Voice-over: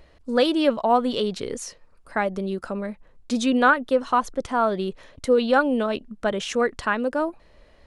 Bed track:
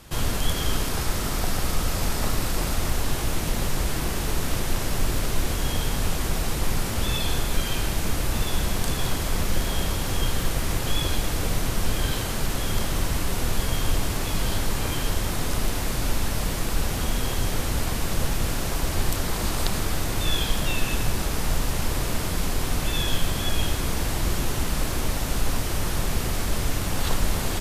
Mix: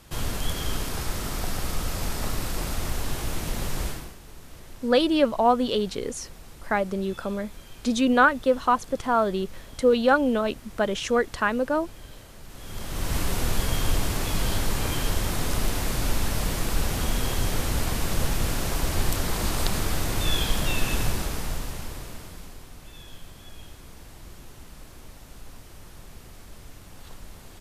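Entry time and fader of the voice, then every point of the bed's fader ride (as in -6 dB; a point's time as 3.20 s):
4.55 s, -0.5 dB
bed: 3.87 s -4 dB
4.18 s -20 dB
12.42 s -20 dB
13.16 s -0.5 dB
21.04 s -0.5 dB
22.71 s -20 dB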